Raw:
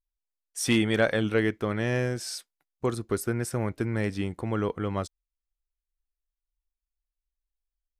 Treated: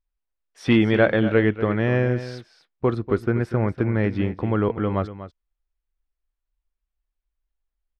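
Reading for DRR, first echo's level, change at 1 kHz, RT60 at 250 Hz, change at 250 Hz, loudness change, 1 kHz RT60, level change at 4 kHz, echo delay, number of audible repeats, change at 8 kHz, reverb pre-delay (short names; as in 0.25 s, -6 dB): none, -13.0 dB, +5.5 dB, none, +6.5 dB, +6.0 dB, none, -1.0 dB, 0.241 s, 1, under -15 dB, none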